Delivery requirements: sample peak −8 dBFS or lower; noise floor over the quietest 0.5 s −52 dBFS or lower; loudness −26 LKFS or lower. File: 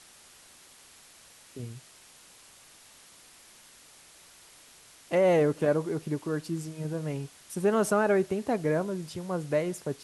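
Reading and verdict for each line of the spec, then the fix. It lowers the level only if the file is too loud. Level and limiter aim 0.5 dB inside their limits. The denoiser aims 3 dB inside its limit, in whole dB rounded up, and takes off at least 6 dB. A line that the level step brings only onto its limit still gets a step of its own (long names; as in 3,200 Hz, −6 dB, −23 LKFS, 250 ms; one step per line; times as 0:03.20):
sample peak −14.0 dBFS: in spec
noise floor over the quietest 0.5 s −55 dBFS: in spec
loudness −28.5 LKFS: in spec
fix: no processing needed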